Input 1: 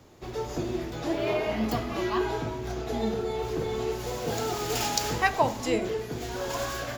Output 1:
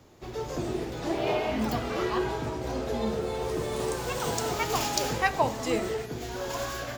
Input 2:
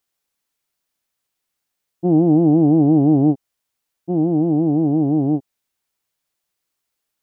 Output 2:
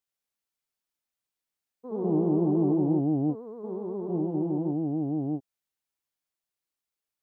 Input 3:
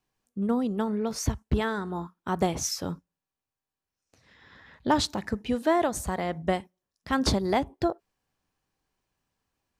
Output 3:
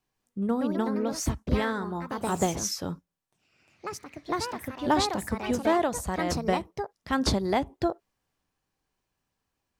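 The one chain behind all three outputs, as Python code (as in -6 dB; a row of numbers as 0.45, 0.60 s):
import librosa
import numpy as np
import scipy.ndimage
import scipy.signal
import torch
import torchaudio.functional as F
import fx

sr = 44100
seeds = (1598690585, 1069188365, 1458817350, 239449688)

y = fx.echo_pitch(x, sr, ms=200, semitones=3, count=2, db_per_echo=-6.0)
y = y * 10.0 ** (-30 / 20.0) / np.sqrt(np.mean(np.square(y)))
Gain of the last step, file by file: -1.5, -12.0, -0.5 dB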